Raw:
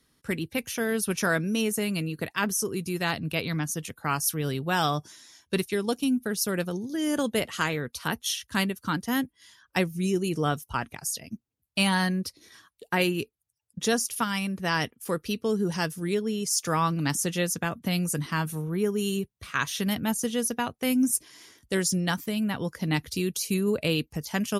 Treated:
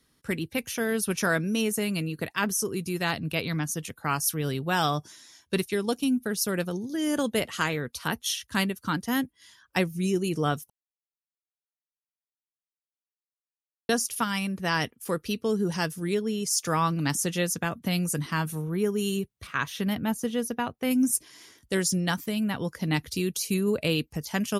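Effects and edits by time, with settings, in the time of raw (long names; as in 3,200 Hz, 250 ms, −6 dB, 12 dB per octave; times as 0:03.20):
0:10.70–0:13.89: silence
0:19.47–0:20.91: parametric band 7,600 Hz −9 dB 2 octaves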